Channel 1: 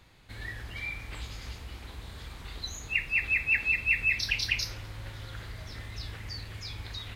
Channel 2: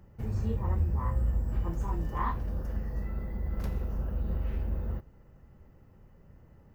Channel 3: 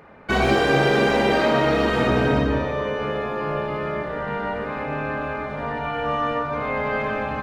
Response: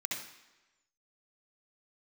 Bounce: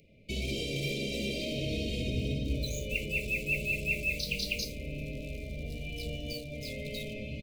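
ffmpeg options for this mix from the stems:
-filter_complex "[0:a]bass=frequency=250:gain=-9,treble=frequency=4000:gain=8,bandreject=frequency=5500:width=6.2,acrusher=bits=5:mix=0:aa=0.5,volume=-6.5dB[link_01];[1:a]adelay=1350,volume=-11dB[link_02];[2:a]equalizer=frequency=570:width=0.35:gain=-14.5,alimiter=limit=-21.5dB:level=0:latency=1:release=110,flanger=delay=2.5:depth=7.8:regen=80:speed=2:shape=triangular,volume=3dB[link_03];[link_01][link_02][link_03]amix=inputs=3:normalize=0,asuperstop=centerf=1200:order=20:qfactor=0.77"

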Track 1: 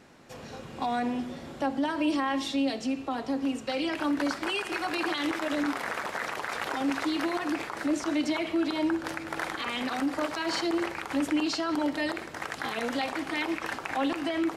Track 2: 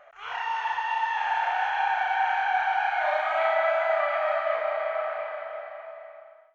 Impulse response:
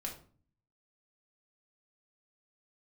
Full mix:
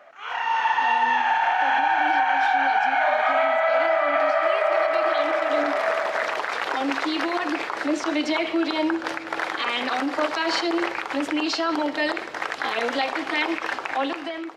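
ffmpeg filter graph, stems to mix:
-filter_complex "[0:a]acrossover=split=320 5900:gain=0.158 1 0.2[link_01][link_02][link_03];[link_01][link_02][link_03]amix=inputs=3:normalize=0,volume=-7dB[link_04];[1:a]highpass=280,volume=3dB[link_05];[link_04][link_05]amix=inputs=2:normalize=0,dynaudnorm=framelen=220:gausssize=7:maxgain=15dB,alimiter=limit=-12dB:level=0:latency=1:release=236"

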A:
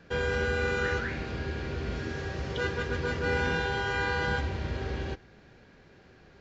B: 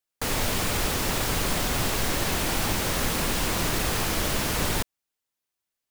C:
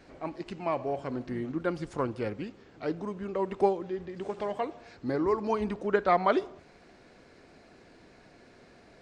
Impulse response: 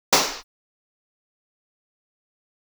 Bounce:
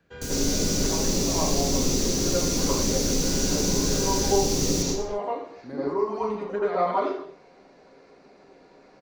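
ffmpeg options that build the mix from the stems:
-filter_complex "[0:a]volume=-12dB[link_01];[1:a]firequalizer=gain_entry='entry(310,0);entry(850,-21);entry(6100,4);entry(8800,-7)':delay=0.05:min_phase=1,volume=-1.5dB,asplit=2[link_02][link_03];[link_03]volume=-16dB[link_04];[2:a]adelay=600,volume=-9.5dB,asplit=2[link_05][link_06];[link_06]volume=-14.5dB[link_07];[3:a]atrim=start_sample=2205[link_08];[link_04][link_07]amix=inputs=2:normalize=0[link_09];[link_09][link_08]afir=irnorm=-1:irlink=0[link_10];[link_01][link_02][link_05][link_10]amix=inputs=4:normalize=0,acrossover=split=120|3000[link_11][link_12][link_13];[link_12]acompressor=threshold=-28dB:ratio=1.5[link_14];[link_11][link_14][link_13]amix=inputs=3:normalize=0,bandreject=frequency=5300:width=19"

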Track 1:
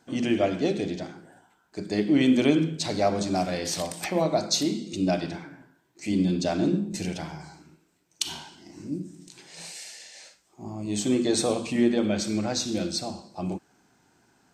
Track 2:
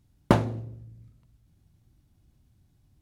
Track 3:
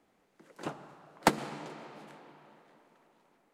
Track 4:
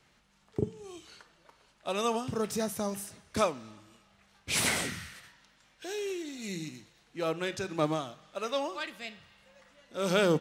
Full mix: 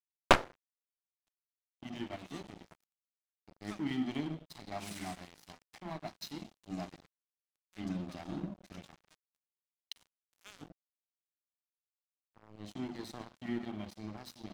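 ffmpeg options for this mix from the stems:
ffmpeg -i stem1.wav -i stem2.wav -i stem3.wav -i stem4.wav -filter_complex "[0:a]lowpass=frequency=5600:width=0.5412,lowpass=frequency=5600:width=1.3066,aecho=1:1:1:0.93,adelay=1700,volume=-14.5dB[link_01];[1:a]highpass=frequency=410:width=0.5412,highpass=frequency=410:width=1.3066,aeval=exprs='0.355*(cos(1*acos(clip(val(0)/0.355,-1,1)))-cos(1*PI/2))+0.0631*(cos(6*acos(clip(val(0)/0.355,-1,1)))-cos(6*PI/2))+0.0891*(cos(7*acos(clip(val(0)/0.355,-1,1)))-cos(7*PI/2))':channel_layout=same,volume=1.5dB[link_02];[2:a]aeval=exprs='(tanh(28.2*val(0)+0.8)-tanh(0.8))/28.2':channel_layout=same,volume=-17.5dB[link_03];[3:a]highpass=1100,highshelf=frequency=2100:gain=6.5,adelay=300,volume=-17.5dB[link_04];[link_01][link_02][link_03][link_04]amix=inputs=4:normalize=0,highshelf=frequency=7400:gain=-8,aeval=exprs='sgn(val(0))*max(abs(val(0))-0.00794,0)':channel_layout=same" out.wav

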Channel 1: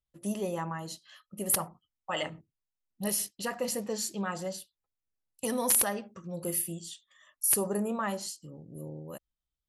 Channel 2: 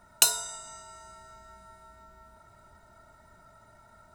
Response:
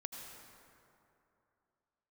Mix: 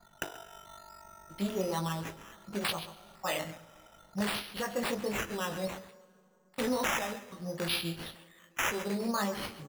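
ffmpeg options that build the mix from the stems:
-filter_complex "[0:a]flanger=delay=17.5:depth=3.8:speed=1.2,adelay=1150,volume=2dB,asplit=3[link_01][link_02][link_03];[link_02]volume=-12dB[link_04];[link_03]volume=-12.5dB[link_05];[1:a]lowpass=frequency=4100:width=0.5412,lowpass=frequency=4100:width=1.3066,aecho=1:1:5.8:0.92,aeval=exprs='val(0)*sin(2*PI*24*n/s)':channel_layout=same,volume=-2.5dB,asplit=2[link_06][link_07];[link_07]volume=-19dB[link_08];[2:a]atrim=start_sample=2205[link_09];[link_04][link_09]afir=irnorm=-1:irlink=0[link_10];[link_05][link_08]amix=inputs=2:normalize=0,aecho=0:1:134:1[link_11];[link_01][link_06][link_10][link_11]amix=inputs=4:normalize=0,acrusher=samples=8:mix=1:aa=0.000001:lfo=1:lforange=4.8:lforate=0.6,alimiter=limit=-21.5dB:level=0:latency=1:release=493"

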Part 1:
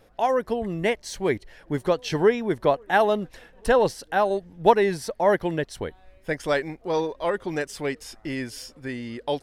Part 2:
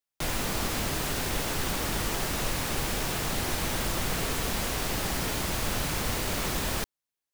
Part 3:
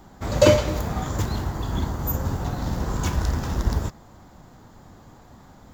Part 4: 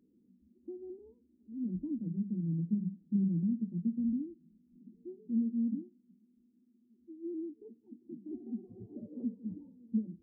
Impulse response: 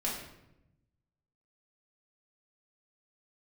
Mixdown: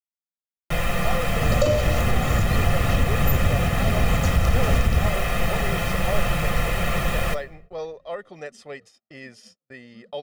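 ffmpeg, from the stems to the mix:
-filter_complex "[0:a]highpass=220,alimiter=limit=-13.5dB:level=0:latency=1:release=220,lowpass=7300,adelay=850,volume=-9dB[link_01];[1:a]highshelf=frequency=3400:width_type=q:width=1.5:gain=-8.5,aecho=1:1:5.8:0.48,adelay=500,volume=2dB,asplit=2[link_02][link_03];[link_03]volume=-16.5dB[link_04];[2:a]equalizer=frequency=270:width_type=o:width=0.77:gain=8,adelay=1200,volume=-1.5dB[link_05];[3:a]volume=-19.5dB,asplit=2[link_06][link_07];[link_07]volume=-14.5dB[link_08];[link_01][link_02][link_05]amix=inputs=3:normalize=0,equalizer=frequency=94:width=0.52:gain=4,alimiter=limit=-12.5dB:level=0:latency=1:release=171,volume=0dB[link_09];[4:a]atrim=start_sample=2205[link_10];[link_04][link_08]amix=inputs=2:normalize=0[link_11];[link_11][link_10]afir=irnorm=-1:irlink=0[link_12];[link_06][link_09][link_12]amix=inputs=3:normalize=0,agate=range=-36dB:threshold=-48dB:ratio=16:detection=peak,aecho=1:1:1.6:0.66"

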